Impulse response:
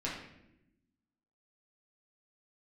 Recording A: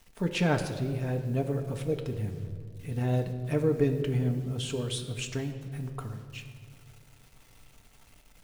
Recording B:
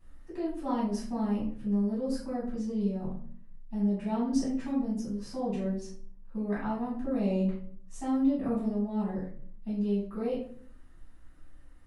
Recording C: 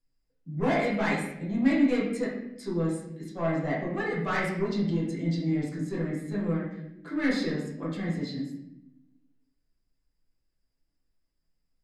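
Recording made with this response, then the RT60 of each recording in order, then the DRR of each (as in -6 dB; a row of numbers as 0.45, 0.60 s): C; 2.3, 0.55, 0.85 s; 4.0, -9.5, -6.5 dB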